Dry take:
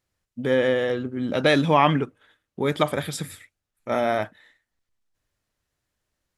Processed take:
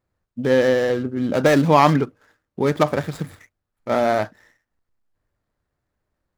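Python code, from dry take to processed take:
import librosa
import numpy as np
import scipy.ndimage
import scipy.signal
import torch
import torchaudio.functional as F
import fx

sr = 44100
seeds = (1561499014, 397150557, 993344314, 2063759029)

y = scipy.ndimage.median_filter(x, 15, mode='constant')
y = y * 10.0 ** (4.5 / 20.0)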